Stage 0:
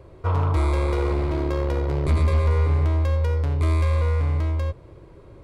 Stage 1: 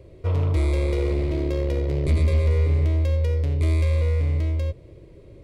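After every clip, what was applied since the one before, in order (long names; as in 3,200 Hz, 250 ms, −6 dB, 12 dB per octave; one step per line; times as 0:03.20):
flat-topped bell 1,100 Hz −11.5 dB 1.3 octaves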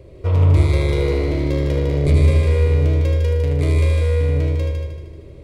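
echo machine with several playback heads 77 ms, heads first and second, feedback 51%, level −6.5 dB
level +4 dB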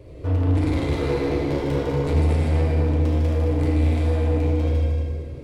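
soft clipping −20.5 dBFS, distortion −8 dB
pitch vibrato 4.7 Hz 33 cents
feedback delay network reverb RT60 1.8 s, low-frequency decay 1.4×, high-frequency decay 0.7×, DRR −2 dB
level −2 dB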